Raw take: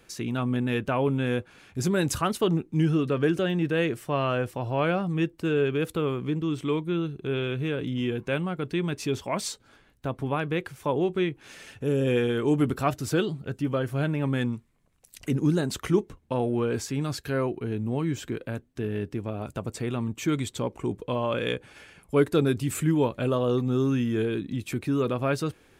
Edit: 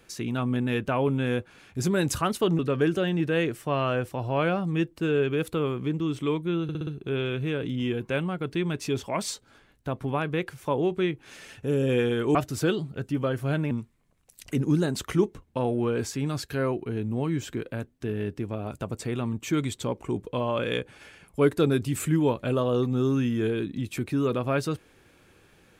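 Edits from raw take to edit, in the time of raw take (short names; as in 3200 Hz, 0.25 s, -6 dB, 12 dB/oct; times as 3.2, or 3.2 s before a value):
2.59–3.01 cut
7.05 stutter 0.06 s, 5 plays
12.53–12.85 cut
14.21–14.46 cut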